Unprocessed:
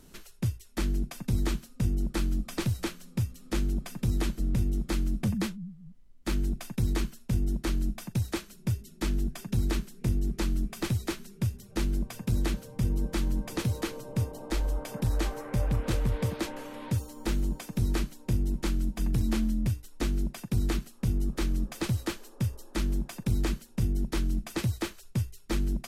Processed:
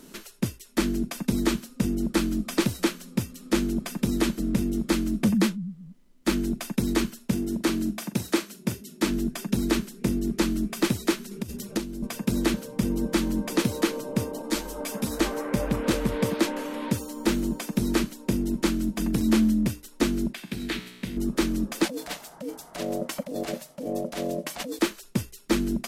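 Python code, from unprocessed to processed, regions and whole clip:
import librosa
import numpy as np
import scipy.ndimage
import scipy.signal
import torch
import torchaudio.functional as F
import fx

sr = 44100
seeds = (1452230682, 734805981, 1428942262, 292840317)

y = fx.chain(x, sr, fx.highpass(hz=110.0, slope=6),
    fx.doubler(ms=44.0, db=-13.5), at=(7.33, 9.11))
y = fx.chain(y, sr, fx.dynamic_eq(hz=1700.0, q=0.85, threshold_db=-53.0, ratio=4.0, max_db=-5),
    fx.over_compress(threshold_db=-31.0, ratio=-0.5), at=(11.31, 12.07))
y = fx.chain(y, sr, fx.high_shelf(hz=3800.0, db=7.0),
    fx.ensemble(), at=(14.42, 15.2))
y = fx.chain(y, sr, fx.band_shelf(hz=2600.0, db=9.5, octaves=1.7),
    fx.comb_fb(f0_hz=61.0, decay_s=1.2, harmonics='all', damping=0.0, mix_pct=70), at=(20.33, 21.17))
y = fx.chain(y, sr, fx.highpass(hz=99.0, slope=12),
    fx.over_compress(threshold_db=-36.0, ratio=-1.0),
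    fx.ring_mod(carrier_hz=380.0), at=(21.85, 24.79))
y = fx.low_shelf_res(y, sr, hz=150.0, db=-12.5, q=1.5)
y = fx.notch(y, sr, hz=760.0, q=14.0)
y = y * librosa.db_to_amplitude(7.5)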